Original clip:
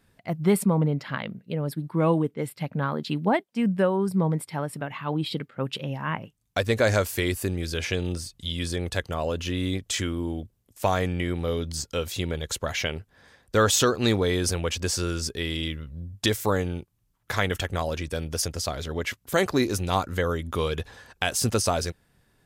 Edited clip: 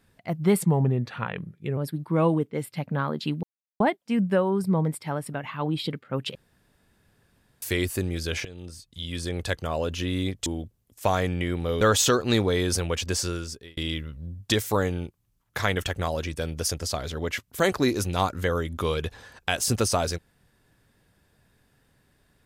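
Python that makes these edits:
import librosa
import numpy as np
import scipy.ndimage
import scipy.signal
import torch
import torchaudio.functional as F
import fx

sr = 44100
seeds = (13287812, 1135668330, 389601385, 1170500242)

y = fx.edit(x, sr, fx.speed_span(start_s=0.62, length_s=0.99, speed=0.86),
    fx.insert_silence(at_s=3.27, length_s=0.37),
    fx.room_tone_fill(start_s=5.82, length_s=1.27),
    fx.fade_in_from(start_s=7.92, length_s=1.04, floor_db=-18.0),
    fx.cut(start_s=9.93, length_s=0.32),
    fx.cut(start_s=11.6, length_s=1.95),
    fx.fade_out_span(start_s=14.92, length_s=0.59), tone=tone)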